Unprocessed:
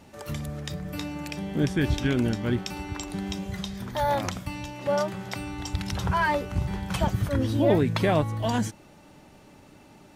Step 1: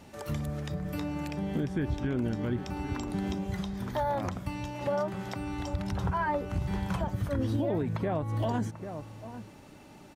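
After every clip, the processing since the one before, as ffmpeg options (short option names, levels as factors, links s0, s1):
-filter_complex "[0:a]acrossover=split=1600[s0][s1];[s0]aecho=1:1:791:0.141[s2];[s1]acompressor=threshold=0.00501:ratio=6[s3];[s2][s3]amix=inputs=2:normalize=0,alimiter=limit=0.0891:level=0:latency=1:release=177"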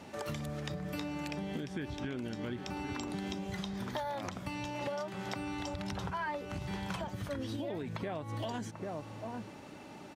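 -filter_complex "[0:a]highpass=f=190:p=1,highshelf=f=8600:g=-10.5,acrossover=split=2300[s0][s1];[s0]acompressor=threshold=0.01:ratio=6[s2];[s2][s1]amix=inputs=2:normalize=0,volume=1.58"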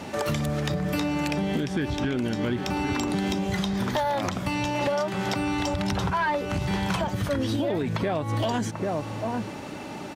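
-af "aeval=exprs='0.075*sin(PI/2*1.78*val(0)/0.075)':c=same,volume=1.58"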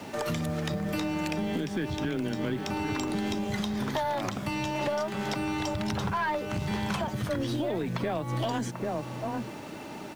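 -af "afreqshift=15,acrusher=bits=8:mix=0:aa=0.000001,aeval=exprs='0.237*(cos(1*acos(clip(val(0)/0.237,-1,1)))-cos(1*PI/2))+0.00531*(cos(6*acos(clip(val(0)/0.237,-1,1)))-cos(6*PI/2))':c=same,volume=0.631"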